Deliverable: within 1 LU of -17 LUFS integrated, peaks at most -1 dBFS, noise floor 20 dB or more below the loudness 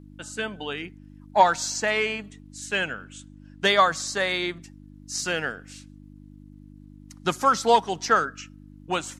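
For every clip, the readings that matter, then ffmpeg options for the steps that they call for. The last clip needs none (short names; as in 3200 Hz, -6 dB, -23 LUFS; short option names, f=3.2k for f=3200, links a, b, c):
hum 50 Hz; harmonics up to 300 Hz; hum level -44 dBFS; loudness -24.5 LUFS; peak -5.0 dBFS; loudness target -17.0 LUFS
-> -af "bandreject=f=50:t=h:w=4,bandreject=f=100:t=h:w=4,bandreject=f=150:t=h:w=4,bandreject=f=200:t=h:w=4,bandreject=f=250:t=h:w=4,bandreject=f=300:t=h:w=4"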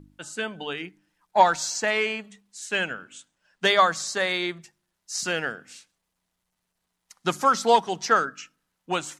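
hum none; loudness -24.5 LUFS; peak -5.0 dBFS; loudness target -17.0 LUFS
-> -af "volume=7.5dB,alimiter=limit=-1dB:level=0:latency=1"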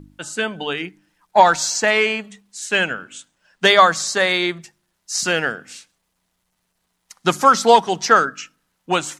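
loudness -17.5 LUFS; peak -1.0 dBFS; noise floor -72 dBFS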